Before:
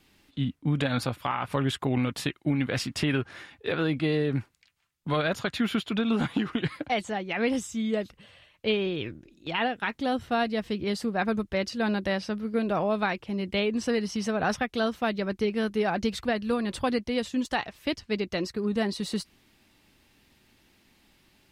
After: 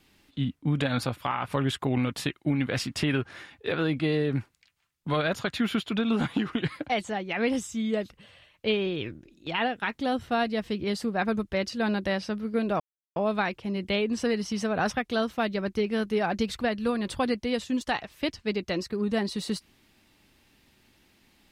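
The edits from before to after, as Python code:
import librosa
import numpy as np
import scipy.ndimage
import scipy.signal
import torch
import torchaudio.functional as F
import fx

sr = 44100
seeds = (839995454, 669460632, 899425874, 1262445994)

y = fx.edit(x, sr, fx.insert_silence(at_s=12.8, length_s=0.36), tone=tone)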